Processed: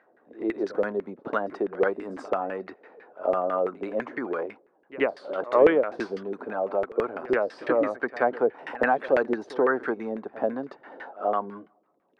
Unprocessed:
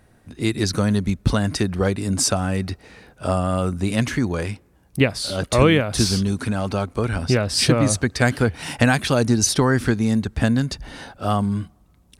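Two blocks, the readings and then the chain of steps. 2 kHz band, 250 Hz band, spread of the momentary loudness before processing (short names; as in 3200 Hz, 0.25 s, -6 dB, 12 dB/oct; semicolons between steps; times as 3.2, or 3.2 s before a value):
-6.0 dB, -11.5 dB, 11 LU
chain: ladder high-pass 300 Hz, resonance 25%; LFO low-pass saw down 6 Hz 410–2000 Hz; pre-echo 82 ms -18 dB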